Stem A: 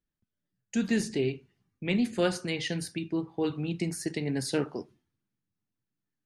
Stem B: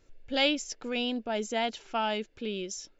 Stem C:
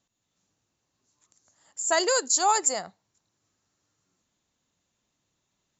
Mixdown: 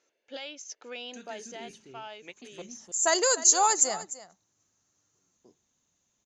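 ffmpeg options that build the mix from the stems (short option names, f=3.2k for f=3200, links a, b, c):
-filter_complex "[0:a]adelay=400,volume=-10dB,asplit=3[a][b][c];[a]atrim=end=2.62,asetpts=PTS-STARTPTS,afade=t=out:st=2.616:d=0.004:c=hsin[d];[b]atrim=start=2.62:end=5.14,asetpts=PTS-STARTPTS,volume=0[e];[c]atrim=start=5.14,asetpts=PTS-STARTPTS,afade=t=in:d=0.004:c=hsin[f];[d][e][f]concat=n=3:v=0:a=1,asplit=2[g][h];[h]volume=-13dB[i];[1:a]lowshelf=f=130:g=-4,volume=-3.5dB,afade=t=out:st=1.32:d=0.6:silence=0.398107,asplit=2[j][k];[2:a]adelay=1150,volume=-1.5dB,asplit=2[l][m];[m]volume=-16dB[n];[k]apad=whole_len=293465[o];[g][o]sidechaingate=range=-33dB:threshold=-55dB:ratio=16:detection=peak[p];[p][j]amix=inputs=2:normalize=0,highpass=450,lowpass=6.5k,alimiter=level_in=5dB:limit=-24dB:level=0:latency=1:release=434,volume=-5dB,volume=0dB[q];[i][n]amix=inputs=2:normalize=0,aecho=0:1:300:1[r];[l][q][r]amix=inputs=3:normalize=0,equalizer=f=6.3k:w=7:g=13"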